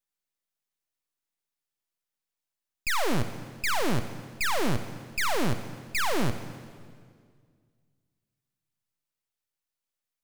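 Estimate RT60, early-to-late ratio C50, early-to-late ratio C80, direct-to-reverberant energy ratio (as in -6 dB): 2.0 s, 11.0 dB, 12.0 dB, 10.5 dB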